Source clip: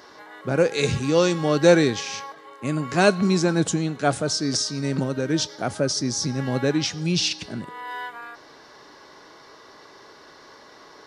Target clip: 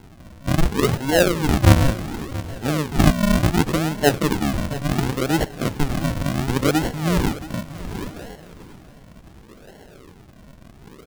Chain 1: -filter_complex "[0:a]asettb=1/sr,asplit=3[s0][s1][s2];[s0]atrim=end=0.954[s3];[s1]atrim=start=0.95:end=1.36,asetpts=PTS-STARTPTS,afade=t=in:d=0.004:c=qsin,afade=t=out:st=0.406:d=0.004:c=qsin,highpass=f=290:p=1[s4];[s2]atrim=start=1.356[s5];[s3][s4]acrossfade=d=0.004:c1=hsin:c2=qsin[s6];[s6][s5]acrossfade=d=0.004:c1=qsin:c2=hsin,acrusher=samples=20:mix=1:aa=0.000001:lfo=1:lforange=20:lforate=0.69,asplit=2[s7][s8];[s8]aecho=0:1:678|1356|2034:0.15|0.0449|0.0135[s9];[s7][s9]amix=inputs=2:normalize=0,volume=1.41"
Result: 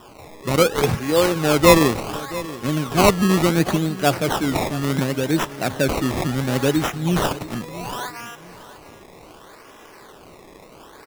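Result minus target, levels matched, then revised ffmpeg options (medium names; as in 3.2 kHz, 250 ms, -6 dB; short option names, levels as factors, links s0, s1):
decimation with a swept rate: distortion -15 dB
-filter_complex "[0:a]asettb=1/sr,asplit=3[s0][s1][s2];[s0]atrim=end=0.954[s3];[s1]atrim=start=0.95:end=1.36,asetpts=PTS-STARTPTS,afade=t=in:d=0.004:c=qsin,afade=t=out:st=0.406:d=0.004:c=qsin,highpass=f=290:p=1[s4];[s2]atrim=start=1.356[s5];[s3][s4]acrossfade=d=0.004:c1=hsin:c2=qsin[s6];[s6][s5]acrossfade=d=0.004:c1=qsin:c2=hsin,acrusher=samples=72:mix=1:aa=0.000001:lfo=1:lforange=72:lforate=0.69,asplit=2[s7][s8];[s8]aecho=0:1:678|1356|2034:0.15|0.0449|0.0135[s9];[s7][s9]amix=inputs=2:normalize=0,volume=1.41"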